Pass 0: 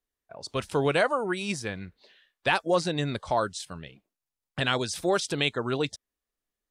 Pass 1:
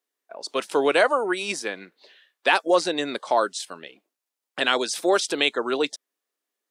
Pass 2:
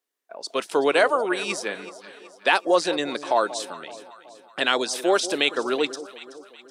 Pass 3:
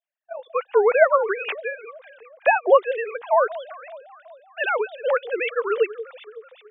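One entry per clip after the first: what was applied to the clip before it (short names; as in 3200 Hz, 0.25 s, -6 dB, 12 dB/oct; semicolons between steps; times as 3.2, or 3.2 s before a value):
HPF 280 Hz 24 dB/oct; gain +5 dB
echo with dull and thin repeats by turns 0.188 s, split 820 Hz, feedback 69%, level -13 dB
sine-wave speech; gain +2 dB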